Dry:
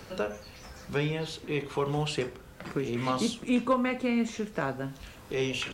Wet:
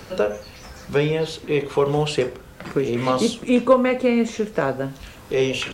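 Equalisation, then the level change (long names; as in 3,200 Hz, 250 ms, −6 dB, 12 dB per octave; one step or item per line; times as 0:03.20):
dynamic equaliser 500 Hz, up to +7 dB, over −44 dBFS, Q 2
+6.5 dB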